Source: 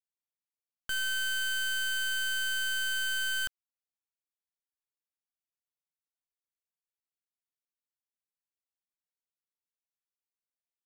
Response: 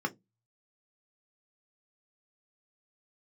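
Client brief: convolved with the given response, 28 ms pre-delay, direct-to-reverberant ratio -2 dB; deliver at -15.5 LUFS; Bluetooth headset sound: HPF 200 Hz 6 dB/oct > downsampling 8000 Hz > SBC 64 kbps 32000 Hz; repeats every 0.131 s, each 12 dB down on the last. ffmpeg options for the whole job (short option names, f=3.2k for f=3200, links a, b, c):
-filter_complex "[0:a]aecho=1:1:131|262|393:0.251|0.0628|0.0157,asplit=2[a][b];[1:a]atrim=start_sample=2205,adelay=28[c];[b][c]afir=irnorm=-1:irlink=0,volume=-4dB[d];[a][d]amix=inputs=2:normalize=0,highpass=f=200:p=1,aresample=8000,aresample=44100,volume=13dB" -ar 32000 -c:a sbc -b:a 64k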